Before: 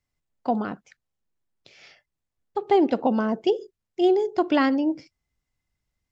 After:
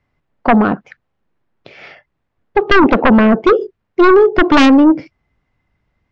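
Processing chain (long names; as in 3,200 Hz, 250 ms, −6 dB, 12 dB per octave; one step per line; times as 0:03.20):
low-pass filter 2,000 Hz 12 dB per octave
low-shelf EQ 69 Hz −8 dB
sine wavefolder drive 10 dB, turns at −9 dBFS
level +4.5 dB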